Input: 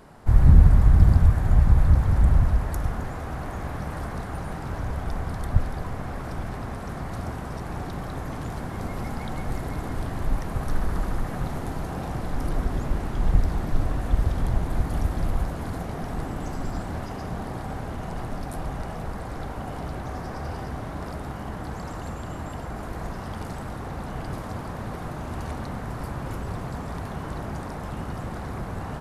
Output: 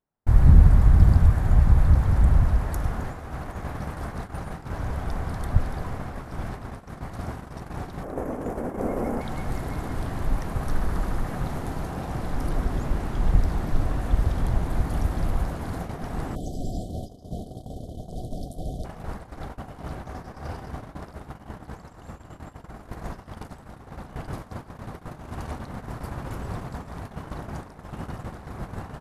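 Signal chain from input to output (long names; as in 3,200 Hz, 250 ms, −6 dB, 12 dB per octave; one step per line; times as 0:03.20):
0:16.35–0:18.85: time-frequency box erased 770–3,000 Hz
noise gate −31 dBFS, range −39 dB
0:08.03–0:09.21: octave-band graphic EQ 125/250/500/4,000 Hz −7/+7/+12/−12 dB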